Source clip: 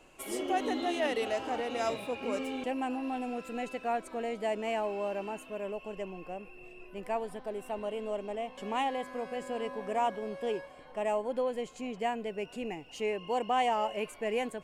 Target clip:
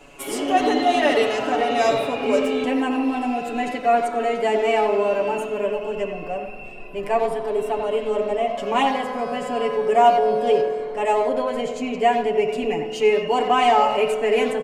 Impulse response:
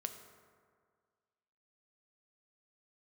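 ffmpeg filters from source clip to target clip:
-filter_complex "[0:a]asplit=2[s0][s1];[s1]adelay=90,highpass=300,lowpass=3400,asoftclip=type=hard:threshold=0.0398,volume=0.447[s2];[s0][s2]amix=inputs=2:normalize=0,asplit=2[s3][s4];[1:a]atrim=start_sample=2205,lowpass=6800,adelay=7[s5];[s4][s5]afir=irnorm=-1:irlink=0,volume=1.5[s6];[s3][s6]amix=inputs=2:normalize=0,volume=2.51"

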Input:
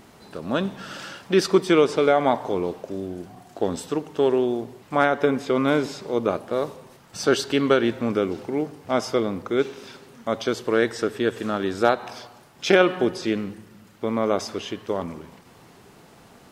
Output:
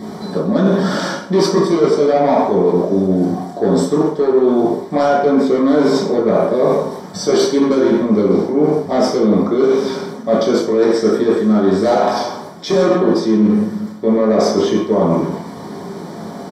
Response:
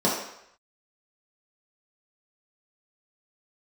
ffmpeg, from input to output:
-filter_complex "[0:a]aresample=32000,aresample=44100,asplit=2[s0][s1];[s1]aeval=exprs='0.631*sin(PI/2*3.98*val(0)/0.631)':c=same,volume=0.422[s2];[s0][s2]amix=inputs=2:normalize=0,asuperstop=centerf=2700:order=4:qfactor=6.2,bandreject=f=88.02:t=h:w=4,bandreject=f=176.04:t=h:w=4,bandreject=f=264.06:t=h:w=4,bandreject=f=352.08:t=h:w=4,bandreject=f=440.1:t=h:w=4,bandreject=f=528.12:t=h:w=4,bandreject=f=616.14:t=h:w=4,bandreject=f=704.16:t=h:w=4,bandreject=f=792.18:t=h:w=4,bandreject=f=880.2:t=h:w=4,bandreject=f=968.22:t=h:w=4,bandreject=f=1056.24:t=h:w=4,bandreject=f=1144.26:t=h:w=4,bandreject=f=1232.28:t=h:w=4,bandreject=f=1320.3:t=h:w=4,bandreject=f=1408.32:t=h:w=4,bandreject=f=1496.34:t=h:w=4,bandreject=f=1584.36:t=h:w=4,bandreject=f=1672.38:t=h:w=4,bandreject=f=1760.4:t=h:w=4,bandreject=f=1848.42:t=h:w=4,bandreject=f=1936.44:t=h:w=4,bandreject=f=2024.46:t=h:w=4,bandreject=f=2112.48:t=h:w=4,bandreject=f=2200.5:t=h:w=4,bandreject=f=2288.52:t=h:w=4,bandreject=f=2376.54:t=h:w=4,bandreject=f=2464.56:t=h:w=4,bandreject=f=2552.58:t=h:w=4,bandreject=f=2640.6:t=h:w=4,bandreject=f=2728.62:t=h:w=4,bandreject=f=2816.64:t=h:w=4,bandreject=f=2904.66:t=h:w=4,bandreject=f=2992.68:t=h:w=4,bandreject=f=3080.7:t=h:w=4,bandreject=f=3168.72:t=h:w=4[s3];[1:a]atrim=start_sample=2205,afade=t=out:st=0.24:d=0.01,atrim=end_sample=11025[s4];[s3][s4]afir=irnorm=-1:irlink=0,areverse,acompressor=threshold=0.794:ratio=5,areverse,volume=0.355"

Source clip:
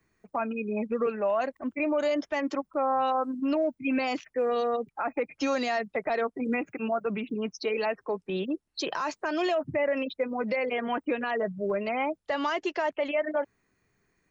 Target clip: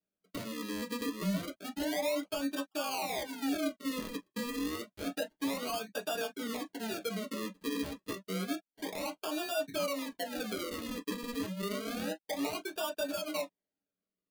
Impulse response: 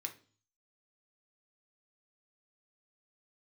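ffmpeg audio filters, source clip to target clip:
-filter_complex "[0:a]afwtdn=0.0251,acrusher=samples=41:mix=1:aa=0.000001:lfo=1:lforange=41:lforate=0.29,acompressor=threshold=0.0398:ratio=6[s0];[1:a]atrim=start_sample=2205,atrim=end_sample=3969,asetrate=79380,aresample=44100[s1];[s0][s1]afir=irnorm=-1:irlink=0,volume=1.78"

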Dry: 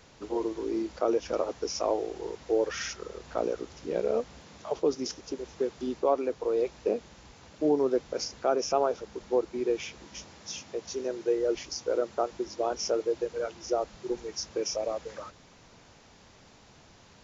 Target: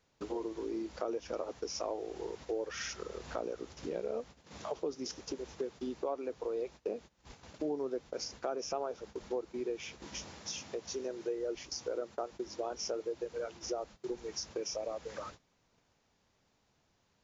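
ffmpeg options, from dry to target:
-af "acompressor=threshold=0.00794:ratio=2.5,agate=range=0.0891:threshold=0.00282:ratio=16:detection=peak,volume=1.33"

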